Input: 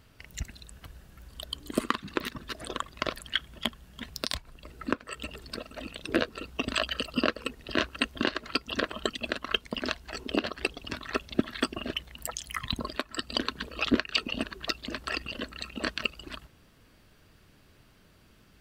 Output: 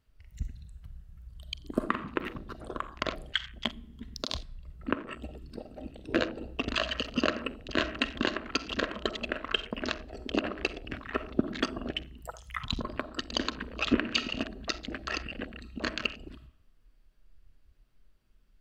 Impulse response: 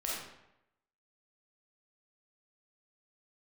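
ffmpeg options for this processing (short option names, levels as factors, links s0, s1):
-filter_complex "[0:a]asplit=2[s0][s1];[1:a]atrim=start_sample=2205,lowshelf=f=130:g=11.5[s2];[s1][s2]afir=irnorm=-1:irlink=0,volume=0.316[s3];[s0][s3]amix=inputs=2:normalize=0,afwtdn=0.0158,volume=0.708"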